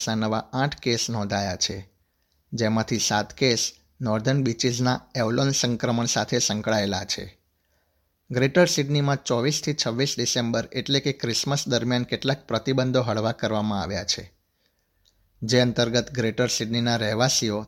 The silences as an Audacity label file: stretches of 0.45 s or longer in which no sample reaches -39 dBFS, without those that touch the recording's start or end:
1.830000	2.520000	silence
7.300000	8.300000	silence
14.270000	15.420000	silence